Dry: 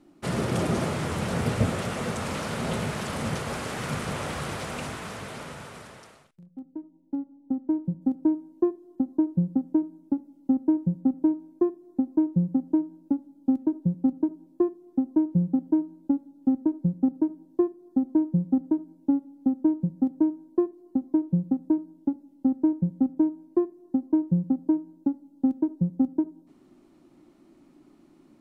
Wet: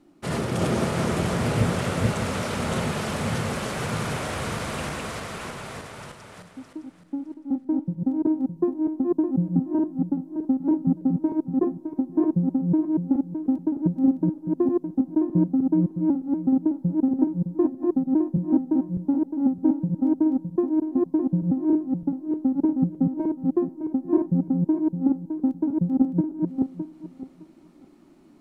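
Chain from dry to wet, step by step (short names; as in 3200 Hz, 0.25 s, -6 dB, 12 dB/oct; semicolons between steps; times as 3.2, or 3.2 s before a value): regenerating reverse delay 0.306 s, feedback 45%, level -1 dB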